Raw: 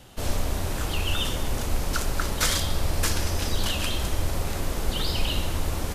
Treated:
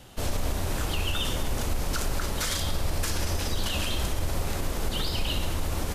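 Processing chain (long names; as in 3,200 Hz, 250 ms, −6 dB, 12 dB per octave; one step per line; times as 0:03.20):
brickwall limiter −18 dBFS, peak gain reduction 8 dB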